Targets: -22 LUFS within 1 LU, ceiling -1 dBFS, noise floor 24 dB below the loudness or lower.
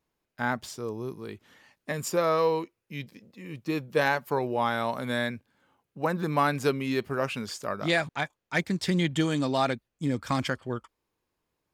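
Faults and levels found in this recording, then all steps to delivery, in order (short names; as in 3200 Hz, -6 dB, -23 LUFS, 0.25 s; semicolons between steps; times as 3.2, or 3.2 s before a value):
loudness -29.0 LUFS; peak -12.0 dBFS; loudness target -22.0 LUFS
-> gain +7 dB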